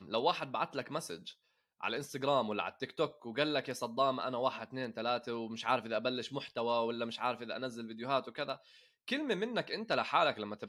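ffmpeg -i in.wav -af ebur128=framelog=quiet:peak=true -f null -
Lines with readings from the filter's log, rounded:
Integrated loudness:
  I:         -35.7 LUFS
  Threshold: -45.9 LUFS
Loudness range:
  LRA:         2.1 LU
  Threshold: -56.2 LUFS
  LRA low:   -37.4 LUFS
  LRA high:  -35.3 LUFS
True peak:
  Peak:      -15.7 dBFS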